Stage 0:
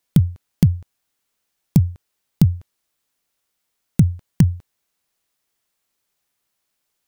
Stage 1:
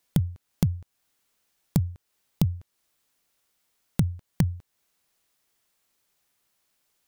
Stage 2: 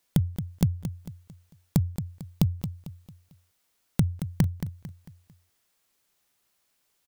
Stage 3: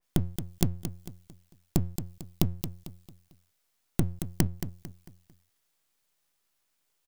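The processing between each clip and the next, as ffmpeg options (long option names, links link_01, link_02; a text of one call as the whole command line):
ffmpeg -i in.wav -af "acompressor=threshold=-31dB:ratio=2,volume=2dB" out.wav
ffmpeg -i in.wav -af "aecho=1:1:224|448|672|896:0.316|0.123|0.0481|0.0188" out.wav
ffmpeg -i in.wav -af "aeval=exprs='max(val(0),0)':channel_layout=same,adynamicequalizer=threshold=0.00126:dfrequency=2300:dqfactor=0.7:tfrequency=2300:tqfactor=0.7:attack=5:release=100:ratio=0.375:range=3.5:mode=boostabove:tftype=highshelf" out.wav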